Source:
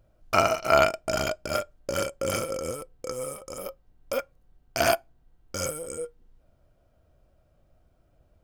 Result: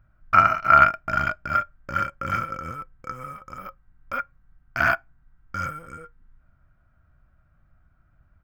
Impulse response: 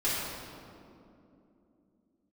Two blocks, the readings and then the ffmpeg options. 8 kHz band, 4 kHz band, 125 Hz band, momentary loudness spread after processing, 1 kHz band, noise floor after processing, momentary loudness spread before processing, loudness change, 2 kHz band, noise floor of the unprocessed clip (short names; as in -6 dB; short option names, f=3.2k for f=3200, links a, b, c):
-17.5 dB, -9.0 dB, +3.5 dB, 22 LU, +8.0 dB, -62 dBFS, 16 LU, +6.0 dB, +8.0 dB, -65 dBFS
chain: -af "firequalizer=gain_entry='entry(160,0);entry(460,-18);entry(780,-7);entry(1400,8);entry(3000,-11);entry(9900,-28);entry(15000,-11)':delay=0.05:min_phase=1,volume=3.5dB"